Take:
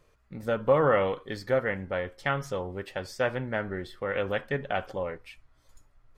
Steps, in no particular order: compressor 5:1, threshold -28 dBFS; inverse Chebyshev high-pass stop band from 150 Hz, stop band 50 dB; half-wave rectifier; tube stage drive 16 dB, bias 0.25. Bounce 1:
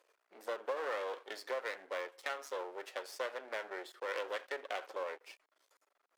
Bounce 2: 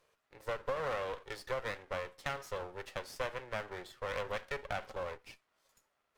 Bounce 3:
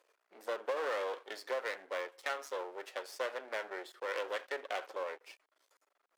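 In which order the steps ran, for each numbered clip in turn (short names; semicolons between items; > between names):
compressor > tube stage > half-wave rectifier > inverse Chebyshev high-pass; inverse Chebyshev high-pass > half-wave rectifier > compressor > tube stage; tube stage > half-wave rectifier > compressor > inverse Chebyshev high-pass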